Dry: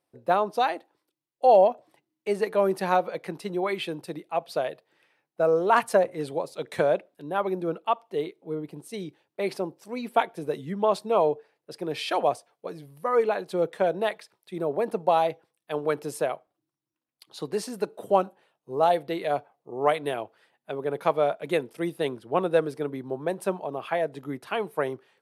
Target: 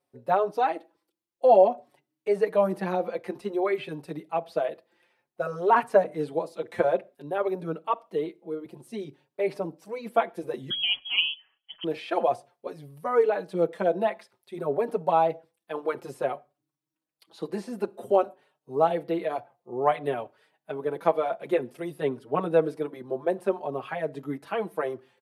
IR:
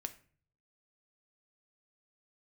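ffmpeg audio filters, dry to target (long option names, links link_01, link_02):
-filter_complex "[0:a]acrossover=split=2700[link_01][link_02];[link_02]acompressor=threshold=-49dB:ratio=4:attack=1:release=60[link_03];[link_01][link_03]amix=inputs=2:normalize=0,asettb=1/sr,asplit=3[link_04][link_05][link_06];[link_04]atrim=end=10.704[link_07];[link_05]atrim=start=10.7:end=11.84,asetpts=PTS-STARTPTS,afade=type=in:duration=0.004:curve=qsin,afade=type=out:start_time=1.136:duration=0.004:curve=qsin,lowpass=frequency=3000:width_type=q:width=0.5098,lowpass=frequency=3000:width_type=q:width=0.6013,lowpass=frequency=3000:width_type=q:width=0.9,lowpass=frequency=3000:width_type=q:width=2.563,afreqshift=-3500[link_08];[link_06]atrim=start=11.836[link_09];[link_07][link_08]acrossfade=duration=0.004:curve1=hsin:curve2=qsin[link_10];[link_10][link_09]acrossfade=duration=0.004:curve1=qsin:curve2=hsin,asplit=2[link_11][link_12];[link_12]tiltshelf=frequency=1300:gain=7.5[link_13];[1:a]atrim=start_sample=2205,afade=type=out:start_time=0.21:duration=0.01,atrim=end_sample=9702,lowshelf=frequency=130:gain=-10.5[link_14];[link_13][link_14]afir=irnorm=-1:irlink=0,volume=-8.5dB[link_15];[link_11][link_15]amix=inputs=2:normalize=0,asplit=2[link_16][link_17];[link_17]adelay=5.1,afreqshift=0.55[link_18];[link_16][link_18]amix=inputs=2:normalize=1"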